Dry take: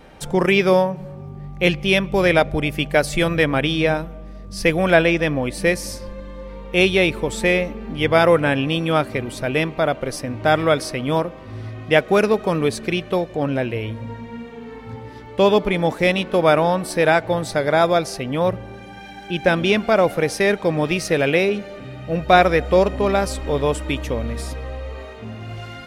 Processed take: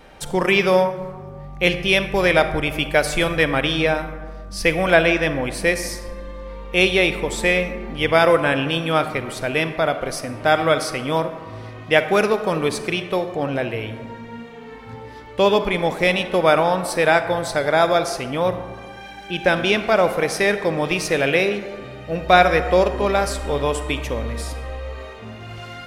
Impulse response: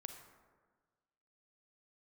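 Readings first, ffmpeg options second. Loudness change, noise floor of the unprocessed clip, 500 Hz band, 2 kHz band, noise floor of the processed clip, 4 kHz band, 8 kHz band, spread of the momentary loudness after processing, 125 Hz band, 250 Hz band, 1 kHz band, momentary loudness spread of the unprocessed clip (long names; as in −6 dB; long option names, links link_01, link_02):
−0.5 dB, −38 dBFS, −0.5 dB, +1.5 dB, −38 dBFS, +1.5 dB, +1.5 dB, 19 LU, −3.0 dB, −3.0 dB, +0.5 dB, 19 LU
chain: -filter_complex "[0:a]equalizer=frequency=160:width=0.37:gain=-5.5,asplit=2[link_01][link_02];[1:a]atrim=start_sample=2205[link_03];[link_02][link_03]afir=irnorm=-1:irlink=0,volume=9.5dB[link_04];[link_01][link_04]amix=inputs=2:normalize=0,volume=-7dB"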